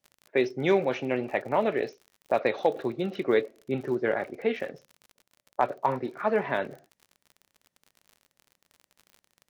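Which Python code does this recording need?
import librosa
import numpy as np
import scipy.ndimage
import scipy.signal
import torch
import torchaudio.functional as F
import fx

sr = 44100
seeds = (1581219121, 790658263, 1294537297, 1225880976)

y = fx.fix_declip(x, sr, threshold_db=-11.5)
y = fx.fix_declick_ar(y, sr, threshold=6.5)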